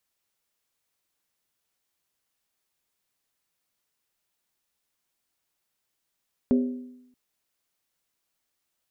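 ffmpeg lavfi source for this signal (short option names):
-f lavfi -i "aevalsrc='0.158*pow(10,-3*t/0.86)*sin(2*PI*250*t)+0.0631*pow(10,-3*t/0.681)*sin(2*PI*398.5*t)+0.0251*pow(10,-3*t/0.588)*sin(2*PI*534*t)+0.01*pow(10,-3*t/0.568)*sin(2*PI*574*t)+0.00398*pow(10,-3*t/0.528)*sin(2*PI*663.2*t)':d=0.63:s=44100"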